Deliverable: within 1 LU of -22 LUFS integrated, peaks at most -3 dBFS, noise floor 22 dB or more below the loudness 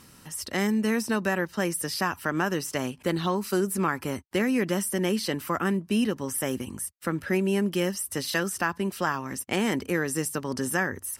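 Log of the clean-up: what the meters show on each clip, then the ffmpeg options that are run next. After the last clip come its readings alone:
loudness -27.5 LUFS; peak level -11.0 dBFS; loudness target -22.0 LUFS
-> -af "volume=1.88"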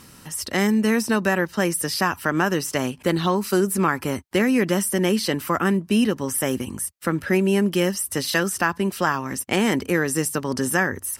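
loudness -22.0 LUFS; peak level -5.5 dBFS; noise floor -48 dBFS

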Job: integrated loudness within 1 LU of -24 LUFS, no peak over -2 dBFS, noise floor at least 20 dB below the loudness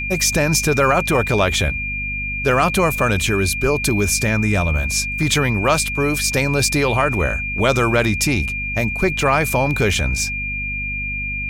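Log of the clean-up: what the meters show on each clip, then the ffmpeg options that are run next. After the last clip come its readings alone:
hum 50 Hz; highest harmonic 250 Hz; hum level -27 dBFS; steady tone 2.4 kHz; tone level -23 dBFS; loudness -18.0 LUFS; peak level -4.0 dBFS; loudness target -24.0 LUFS
-> -af "bandreject=f=50:t=h:w=6,bandreject=f=100:t=h:w=6,bandreject=f=150:t=h:w=6,bandreject=f=200:t=h:w=6,bandreject=f=250:t=h:w=6"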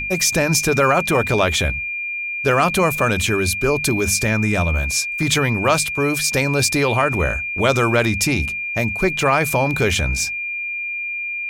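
hum not found; steady tone 2.4 kHz; tone level -23 dBFS
-> -af "bandreject=f=2400:w=30"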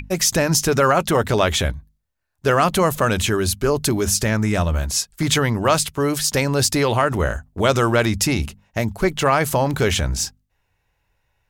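steady tone not found; loudness -19.5 LUFS; peak level -3.5 dBFS; loudness target -24.0 LUFS
-> -af "volume=0.596"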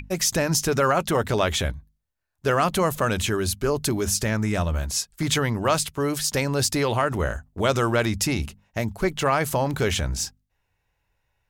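loudness -24.0 LUFS; peak level -8.0 dBFS; noise floor -75 dBFS

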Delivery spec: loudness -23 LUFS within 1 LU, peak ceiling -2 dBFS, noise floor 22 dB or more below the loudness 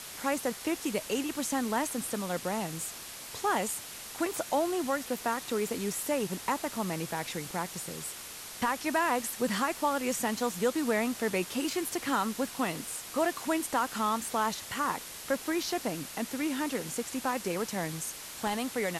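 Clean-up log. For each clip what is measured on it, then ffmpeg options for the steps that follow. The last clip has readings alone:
noise floor -44 dBFS; noise floor target -54 dBFS; loudness -32.0 LUFS; peak level -16.5 dBFS; loudness target -23.0 LUFS
-> -af "afftdn=nr=10:nf=-44"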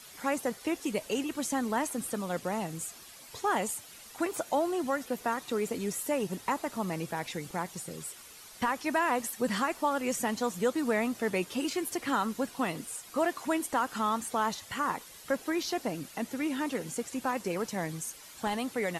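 noise floor -51 dBFS; noise floor target -55 dBFS
-> -af "afftdn=nr=6:nf=-51"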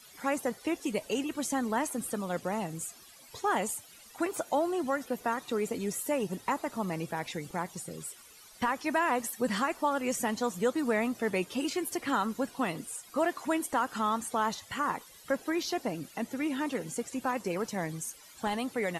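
noise floor -54 dBFS; noise floor target -55 dBFS
-> -af "afftdn=nr=6:nf=-54"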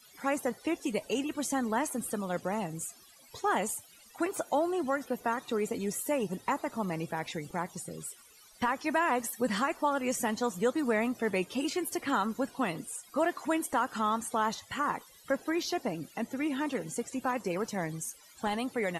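noise floor -57 dBFS; loudness -32.5 LUFS; peak level -17.0 dBFS; loudness target -23.0 LUFS
-> -af "volume=2.99"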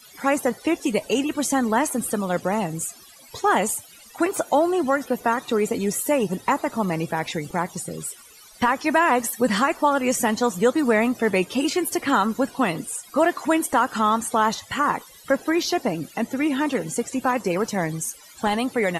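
loudness -23.0 LUFS; peak level -7.5 dBFS; noise floor -48 dBFS

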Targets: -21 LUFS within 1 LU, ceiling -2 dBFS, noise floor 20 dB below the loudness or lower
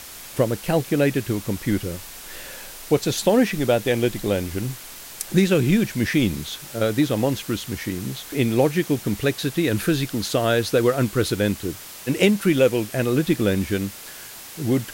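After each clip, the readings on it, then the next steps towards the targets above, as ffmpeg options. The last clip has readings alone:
noise floor -39 dBFS; noise floor target -42 dBFS; loudness -22.0 LUFS; peak level -5.0 dBFS; loudness target -21.0 LUFS
-> -af "afftdn=nr=6:nf=-39"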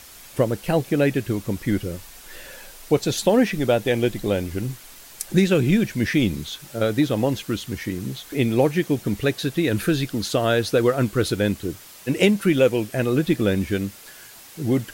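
noise floor -44 dBFS; loudness -22.5 LUFS; peak level -5.0 dBFS; loudness target -21.0 LUFS
-> -af "volume=1.19"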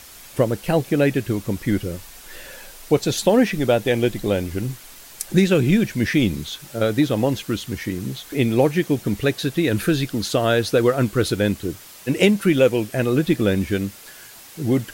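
loudness -21.0 LUFS; peak level -3.5 dBFS; noise floor -43 dBFS

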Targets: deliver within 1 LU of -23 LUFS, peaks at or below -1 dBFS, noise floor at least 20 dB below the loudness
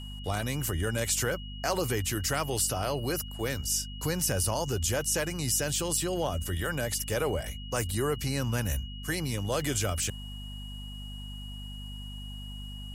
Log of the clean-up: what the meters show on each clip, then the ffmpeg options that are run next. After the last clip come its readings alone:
hum 50 Hz; highest harmonic 250 Hz; hum level -38 dBFS; steady tone 2.9 kHz; tone level -45 dBFS; loudness -30.0 LUFS; peak level -14.5 dBFS; loudness target -23.0 LUFS
-> -af "bandreject=f=50:t=h:w=6,bandreject=f=100:t=h:w=6,bandreject=f=150:t=h:w=6,bandreject=f=200:t=h:w=6,bandreject=f=250:t=h:w=6"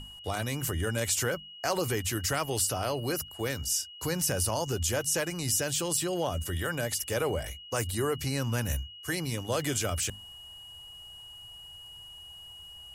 hum not found; steady tone 2.9 kHz; tone level -45 dBFS
-> -af "bandreject=f=2900:w=30"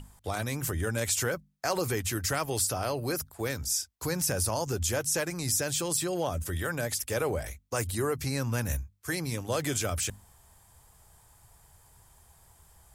steady tone not found; loudness -30.5 LUFS; peak level -15.5 dBFS; loudness target -23.0 LUFS
-> -af "volume=2.37"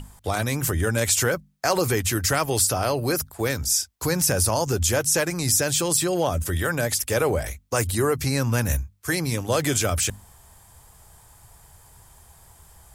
loudness -23.0 LUFS; peak level -8.0 dBFS; noise floor -53 dBFS

